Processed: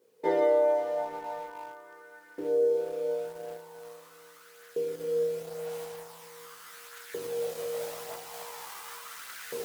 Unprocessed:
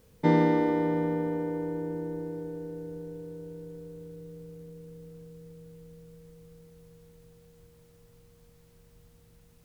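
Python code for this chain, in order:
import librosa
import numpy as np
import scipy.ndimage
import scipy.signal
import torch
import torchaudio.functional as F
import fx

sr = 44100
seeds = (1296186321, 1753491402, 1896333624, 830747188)

p1 = fx.recorder_agc(x, sr, target_db=-18.5, rise_db_per_s=13.0, max_gain_db=30)
p2 = p1 + fx.echo_heads(p1, sr, ms=62, heads='all three', feedback_pct=41, wet_db=-13, dry=0)
p3 = fx.chorus_voices(p2, sr, voices=2, hz=0.43, base_ms=17, depth_ms=1.8, mix_pct=55)
p4 = fx.filter_lfo_highpass(p3, sr, shape='saw_up', hz=0.42, low_hz=390.0, high_hz=1600.0, q=3.5)
p5 = np.where(np.abs(p4) >= 10.0 ** (-34.5 / 20.0), p4, 0.0)
p6 = p4 + (p5 * 10.0 ** (-9.0 / 20.0))
y = p6 * 10.0 ** (-5.5 / 20.0)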